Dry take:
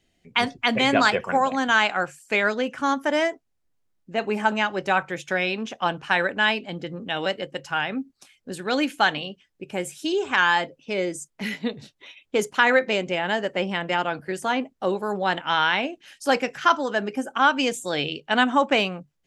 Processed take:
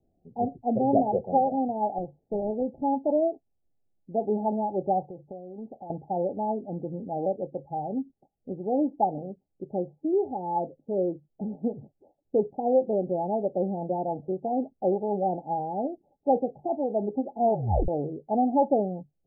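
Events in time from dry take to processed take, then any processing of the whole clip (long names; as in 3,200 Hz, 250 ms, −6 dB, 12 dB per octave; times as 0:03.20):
0:01.98–0:02.83: running median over 41 samples
0:05.03–0:05.90: downward compressor 4 to 1, threshold −35 dBFS
0:17.37: tape stop 0.51 s
whole clip: Chebyshev low-pass filter 850 Hz, order 10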